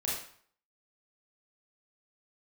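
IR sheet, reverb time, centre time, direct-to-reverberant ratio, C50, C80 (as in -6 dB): 0.55 s, 53 ms, -6.0 dB, 1.5 dB, 6.0 dB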